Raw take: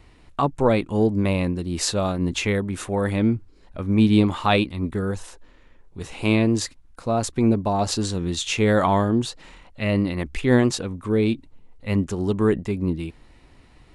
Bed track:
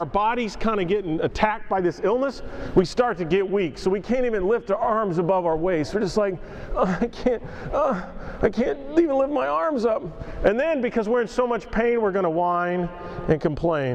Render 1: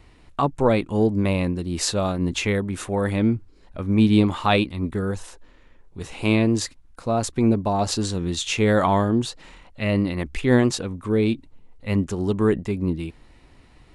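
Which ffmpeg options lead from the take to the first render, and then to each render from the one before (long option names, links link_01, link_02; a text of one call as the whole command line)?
ffmpeg -i in.wav -af anull out.wav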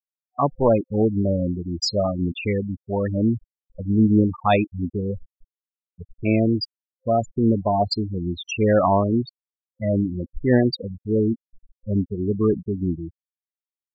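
ffmpeg -i in.wav -af "afftfilt=real='re*gte(hypot(re,im),0.178)':imag='im*gte(hypot(re,im),0.178)':win_size=1024:overlap=0.75,superequalizer=8b=1.58:14b=3.98" out.wav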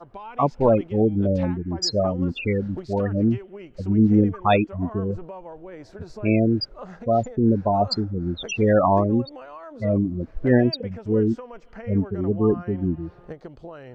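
ffmpeg -i in.wav -i bed.wav -filter_complex "[1:a]volume=-17.5dB[link_01];[0:a][link_01]amix=inputs=2:normalize=0" out.wav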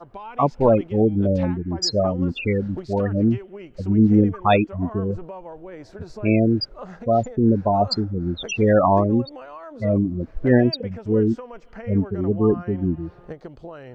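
ffmpeg -i in.wav -af "volume=1.5dB" out.wav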